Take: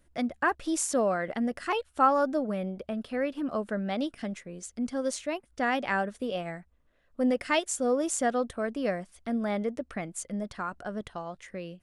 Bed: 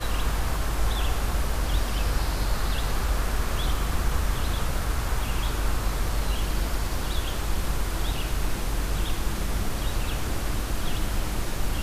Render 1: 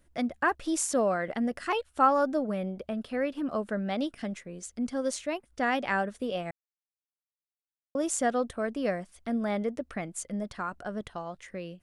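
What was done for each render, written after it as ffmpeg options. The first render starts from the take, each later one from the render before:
-filter_complex "[0:a]asplit=3[a][b][c];[a]atrim=end=6.51,asetpts=PTS-STARTPTS,afade=t=out:st=6.506:d=0.004:c=hsin[d];[b]atrim=start=6.51:end=7.95,asetpts=PTS-STARTPTS,volume=0[e];[c]atrim=start=7.95,asetpts=PTS-STARTPTS,afade=t=in:d=0.004:c=hsin[f];[d][e][f]concat=n=3:v=0:a=1"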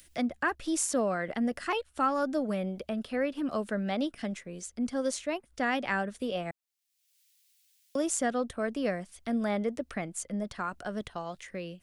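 -filter_complex "[0:a]acrossover=split=360|1400|2000[a][b][c][d];[b]alimiter=level_in=1dB:limit=-24dB:level=0:latency=1:release=465,volume=-1dB[e];[d]acompressor=mode=upward:threshold=-44dB:ratio=2.5[f];[a][e][c][f]amix=inputs=4:normalize=0"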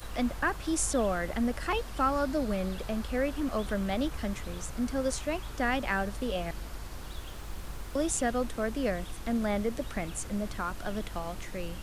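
-filter_complex "[1:a]volume=-13.5dB[a];[0:a][a]amix=inputs=2:normalize=0"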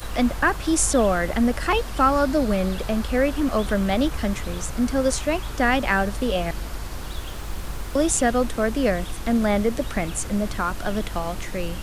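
-af "volume=9dB"

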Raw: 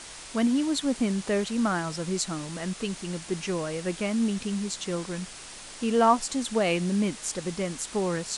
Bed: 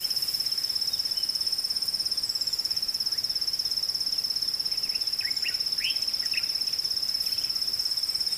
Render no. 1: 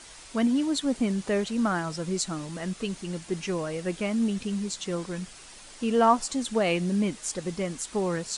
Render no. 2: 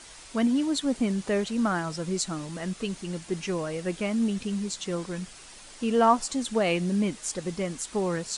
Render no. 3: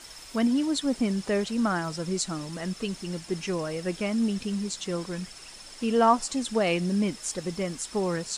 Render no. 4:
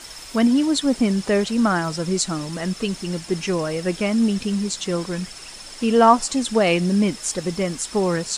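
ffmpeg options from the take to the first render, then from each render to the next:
-af "afftdn=nr=6:nf=-43"
-af anull
-filter_complex "[1:a]volume=-21.5dB[a];[0:a][a]amix=inputs=2:normalize=0"
-af "volume=7dB"

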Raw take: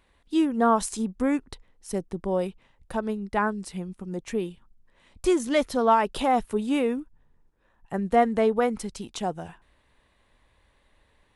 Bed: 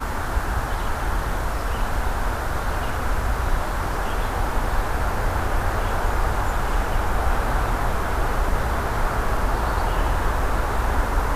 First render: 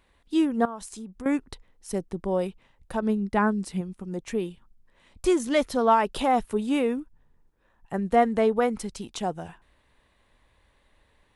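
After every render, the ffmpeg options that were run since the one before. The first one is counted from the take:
-filter_complex "[0:a]asettb=1/sr,asplit=3[a][b][c];[a]atrim=end=0.654[d];[b]atrim=start=0.65:end=1.26,asetpts=PTS-STARTPTS,afade=t=in:d=0.004:c=qsin,afade=t=out:st=0.606:d=0.004:c=qsin,acompressor=threshold=-41dB:ratio=2.5:attack=3.2:release=140:knee=1:detection=peak[e];[c]atrim=start=1.256[f];[d][e]acrossfade=d=0.004:c1=hsin:c2=qsin[g];[g][f]acrossfade=d=0.004:c1=qsin:c2=hsin,asettb=1/sr,asplit=3[h][i][j];[h]atrim=end=3.024[k];[i]atrim=start=3.02:end=3.81,asetpts=PTS-STARTPTS,afade=t=in:d=0.004:c=qsin,afade=t=out:st=0.786:d=0.004:c=qsin,equalizer=f=230:w=1:g=6[l];[j]atrim=start=3.806[m];[k][l]acrossfade=d=0.004:c1=hsin:c2=qsin[n];[n][m]acrossfade=d=0.004:c1=qsin:c2=hsin"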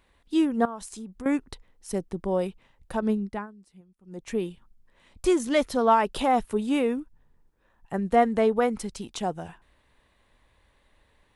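-filter_complex "[0:a]asplit=3[a][b][c];[a]atrim=end=3.47,asetpts=PTS-STARTPTS,afade=t=out:st=3.14:d=0.33:silence=0.0749894[d];[b]atrim=start=3.47:end=4.02,asetpts=PTS-STARTPTS,volume=-22.5dB[e];[c]atrim=start=4.02,asetpts=PTS-STARTPTS,afade=t=in:d=0.33:silence=0.0749894[f];[d][e][f]concat=n=3:v=0:a=1"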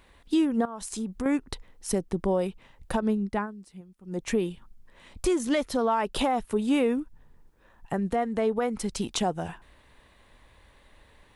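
-filter_complex "[0:a]asplit=2[a][b];[b]acompressor=threshold=-30dB:ratio=6,volume=2dB[c];[a][c]amix=inputs=2:normalize=0,alimiter=limit=-16dB:level=0:latency=1:release=395"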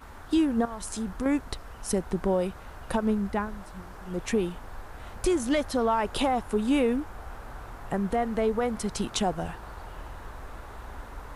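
-filter_complex "[1:a]volume=-19.5dB[a];[0:a][a]amix=inputs=2:normalize=0"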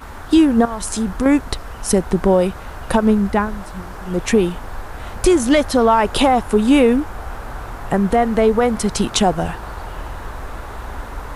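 -af "volume=11.5dB"

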